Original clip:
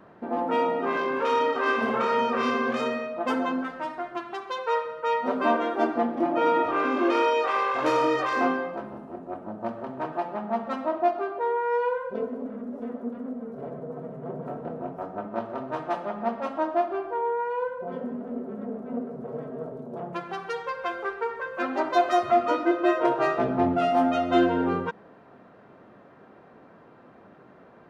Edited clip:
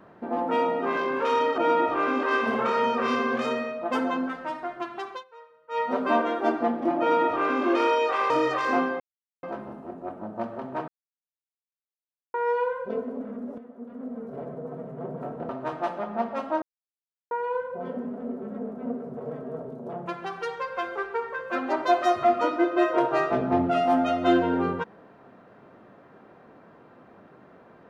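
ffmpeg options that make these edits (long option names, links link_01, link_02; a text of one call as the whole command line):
ffmpeg -i in.wav -filter_complex "[0:a]asplit=13[link_01][link_02][link_03][link_04][link_05][link_06][link_07][link_08][link_09][link_10][link_11][link_12][link_13];[link_01]atrim=end=1.582[link_14];[link_02]atrim=start=6.348:end=7.002[link_15];[link_03]atrim=start=1.578:end=4.59,asetpts=PTS-STARTPTS,afade=type=out:start_time=2.882:duration=0.13:silence=0.0707946[link_16];[link_04]atrim=start=4.59:end=5.03,asetpts=PTS-STARTPTS,volume=-23dB[link_17];[link_05]atrim=start=5.03:end=7.652,asetpts=PTS-STARTPTS,afade=type=in:duration=0.13:silence=0.0707946[link_18];[link_06]atrim=start=7.978:end=8.68,asetpts=PTS-STARTPTS,afade=type=out:start_time=0.698:duration=0.004:curve=hsin,apad=pad_dur=0.43[link_19];[link_07]atrim=start=8.68:end=10.13,asetpts=PTS-STARTPTS,afade=type=in:duration=0.004:curve=hsin,afade=type=out:start_time=1.446:duration=0.004:curve=hsin[link_20];[link_08]atrim=start=10.13:end=11.59,asetpts=PTS-STARTPTS,volume=0[link_21];[link_09]atrim=start=11.59:end=12.83,asetpts=PTS-STARTPTS,afade=type=in:duration=0.004:curve=hsin,afade=type=out:start_time=1.236:duration=0.004:curve=hsin:silence=0.251189[link_22];[link_10]atrim=start=12.83:end=14.742,asetpts=PTS-STARTPTS,afade=type=in:duration=0.55:curve=qua:silence=0.251189[link_23];[link_11]atrim=start=15.558:end=16.69,asetpts=PTS-STARTPTS,afade=type=out:start_time=1.128:duration=0.004:curve=hsin[link_24];[link_12]atrim=start=16.69:end=17.38,asetpts=PTS-STARTPTS,volume=0[link_25];[link_13]atrim=start=17.38,asetpts=PTS-STARTPTS,afade=type=in:duration=0.004:curve=hsin[link_26];[link_14][link_15]acrossfade=duration=0.004:curve1=hsin:curve2=hsin[link_27];[link_16][link_17][link_18]concat=n=3:v=0:a=1[link_28];[link_27][link_28]acrossfade=duration=0.004:curve1=hsin:curve2=hsin[link_29];[link_19][link_20][link_21][link_22][link_23]concat=n=5:v=0:a=1[link_30];[link_29][link_30]acrossfade=duration=0.004:curve1=hsin:curve2=hsin[link_31];[link_24][link_25][link_26]concat=n=3:v=0:a=1[link_32];[link_31][link_32]acrossfade=duration=0.004:curve1=hsin:curve2=hsin" out.wav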